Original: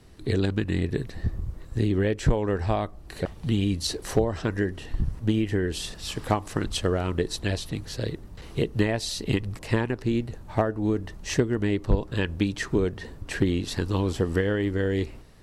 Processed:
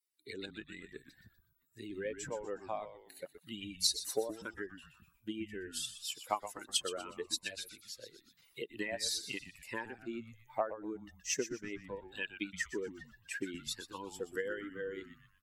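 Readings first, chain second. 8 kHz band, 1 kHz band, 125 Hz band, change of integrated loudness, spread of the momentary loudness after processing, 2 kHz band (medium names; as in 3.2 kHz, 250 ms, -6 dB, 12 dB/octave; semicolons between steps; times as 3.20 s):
-2.0 dB, -9.5 dB, -30.0 dB, -12.5 dB, 14 LU, -8.5 dB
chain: expander on every frequency bin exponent 2; high-pass 400 Hz 12 dB/octave; treble shelf 3 kHz +10.5 dB; on a send: frequency-shifting echo 122 ms, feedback 35%, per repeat -120 Hz, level -11.5 dB; on the sum: tape noise reduction on one side only encoder only; trim -6 dB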